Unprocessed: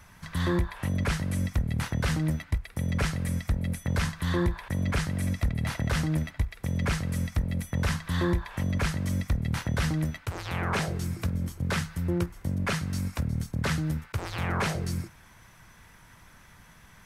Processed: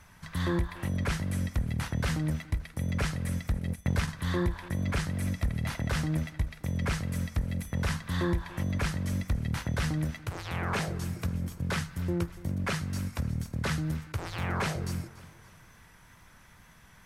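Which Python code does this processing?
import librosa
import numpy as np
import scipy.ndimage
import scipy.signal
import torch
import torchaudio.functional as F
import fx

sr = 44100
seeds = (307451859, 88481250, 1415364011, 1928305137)

y = fx.wow_flutter(x, sr, seeds[0], rate_hz=2.1, depth_cents=26.0)
y = fx.echo_feedback(y, sr, ms=287, feedback_pct=45, wet_db=-18.5)
y = fx.transient(y, sr, attack_db=5, sustain_db=-10, at=(3.59, 4.07), fade=0.02)
y = F.gain(torch.from_numpy(y), -2.5).numpy()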